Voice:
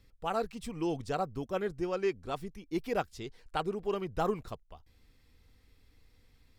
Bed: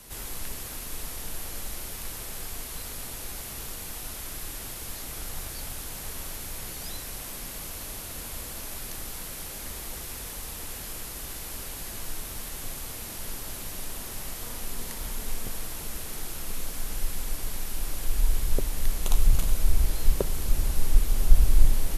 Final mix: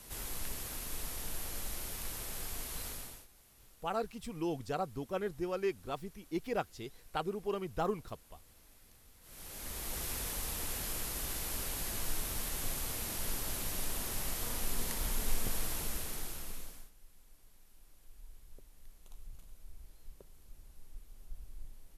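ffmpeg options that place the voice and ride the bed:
ffmpeg -i stem1.wav -i stem2.wav -filter_complex "[0:a]adelay=3600,volume=-3dB[link_01];[1:a]volume=20dB,afade=type=out:start_time=2.87:duration=0.4:silence=0.0891251,afade=type=in:start_time=9.21:duration=0.85:silence=0.0595662,afade=type=out:start_time=15.73:duration=1.18:silence=0.0354813[link_02];[link_01][link_02]amix=inputs=2:normalize=0" out.wav

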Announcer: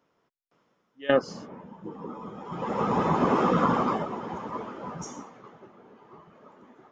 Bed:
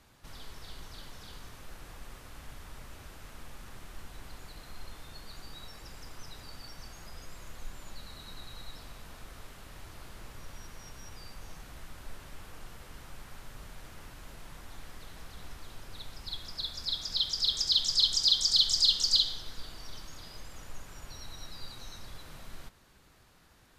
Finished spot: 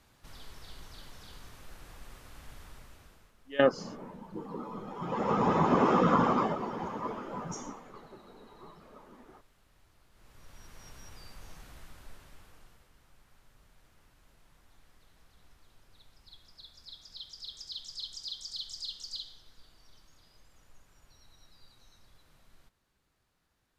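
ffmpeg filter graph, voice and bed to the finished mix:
ffmpeg -i stem1.wav -i stem2.wav -filter_complex "[0:a]adelay=2500,volume=-1.5dB[link_01];[1:a]volume=12dB,afade=type=out:start_time=2.62:duration=0.71:silence=0.177828,afade=type=in:start_time=10.11:duration=0.78:silence=0.188365,afade=type=out:start_time=11.65:duration=1.26:silence=0.237137[link_02];[link_01][link_02]amix=inputs=2:normalize=0" out.wav

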